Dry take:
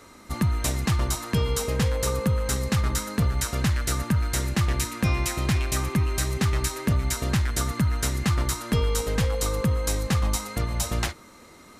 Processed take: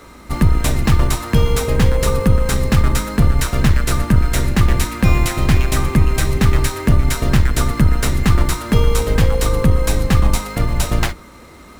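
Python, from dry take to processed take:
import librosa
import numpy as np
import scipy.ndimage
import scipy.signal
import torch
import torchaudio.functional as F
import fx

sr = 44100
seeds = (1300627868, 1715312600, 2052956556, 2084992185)

p1 = fx.octave_divider(x, sr, octaves=2, level_db=0.0)
p2 = fx.sample_hold(p1, sr, seeds[0], rate_hz=9400.0, jitter_pct=0)
p3 = p1 + (p2 * librosa.db_to_amplitude(-4.0))
y = p3 * librosa.db_to_amplitude(4.0)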